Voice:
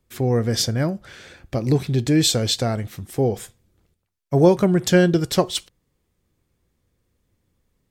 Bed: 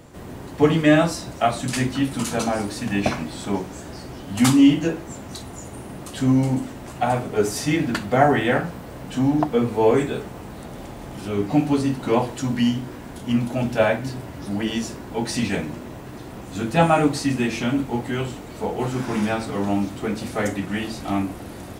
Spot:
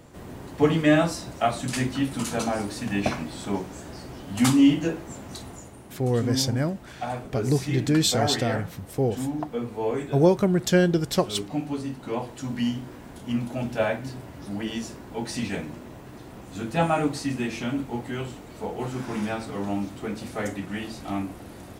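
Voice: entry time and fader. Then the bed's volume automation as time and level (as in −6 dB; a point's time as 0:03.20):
5.80 s, −4.0 dB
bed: 0:05.49 −3.5 dB
0:05.77 −10 dB
0:12.17 −10 dB
0:12.64 −6 dB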